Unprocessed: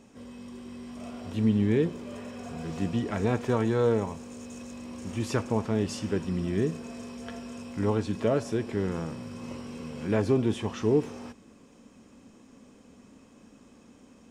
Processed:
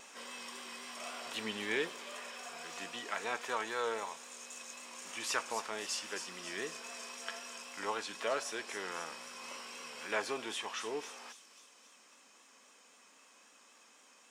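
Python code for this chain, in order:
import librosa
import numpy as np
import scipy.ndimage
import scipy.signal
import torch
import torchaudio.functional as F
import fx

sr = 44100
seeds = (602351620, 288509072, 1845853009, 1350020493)

p1 = scipy.signal.sosfilt(scipy.signal.butter(2, 1100.0, 'highpass', fs=sr, output='sos'), x)
p2 = fx.rider(p1, sr, range_db=10, speed_s=2.0)
p3 = p2 + fx.echo_wet_highpass(p2, sr, ms=271, feedback_pct=56, hz=4900.0, wet_db=-6.0, dry=0)
p4 = fx.vibrato(p3, sr, rate_hz=3.8, depth_cents=35.0)
y = p4 * 10.0 ** (1.5 / 20.0)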